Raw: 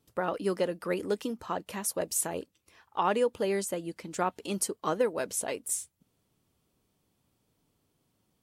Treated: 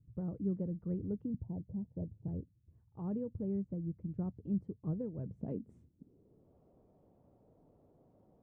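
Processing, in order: 1.34–2.28 s: steep low-pass 950 Hz 96 dB/octave; low-pass sweep 120 Hz -> 630 Hz, 5.21–6.57 s; trim +7 dB

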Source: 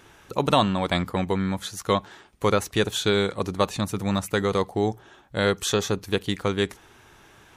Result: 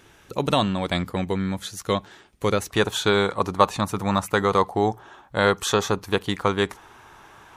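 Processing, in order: peaking EQ 1 kHz -3 dB 1.2 oct, from 2.70 s +9.5 dB

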